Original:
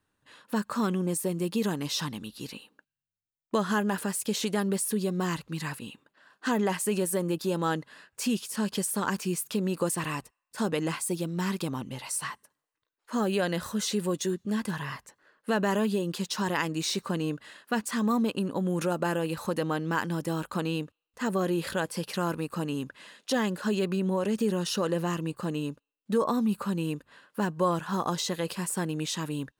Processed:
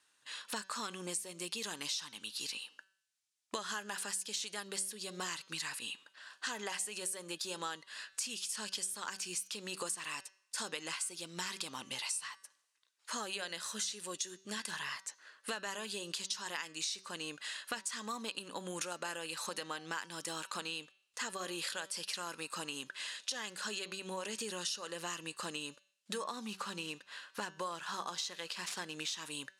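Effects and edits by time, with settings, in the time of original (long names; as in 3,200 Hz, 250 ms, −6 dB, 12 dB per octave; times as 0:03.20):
0:26.28–0:29.22: running median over 5 samples
whole clip: meter weighting curve ITU-R 468; downward compressor 6 to 1, threshold −39 dBFS; hum removal 191.5 Hz, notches 35; level +1.5 dB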